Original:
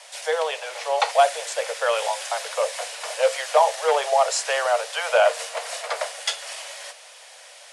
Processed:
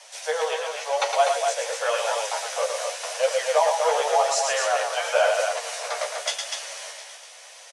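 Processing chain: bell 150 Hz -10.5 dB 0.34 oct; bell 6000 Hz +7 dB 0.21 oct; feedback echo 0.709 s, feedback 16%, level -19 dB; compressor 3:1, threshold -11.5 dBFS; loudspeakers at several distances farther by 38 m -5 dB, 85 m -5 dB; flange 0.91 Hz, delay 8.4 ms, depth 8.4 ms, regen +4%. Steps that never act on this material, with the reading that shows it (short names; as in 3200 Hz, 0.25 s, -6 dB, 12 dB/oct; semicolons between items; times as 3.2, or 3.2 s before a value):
bell 150 Hz: input band starts at 380 Hz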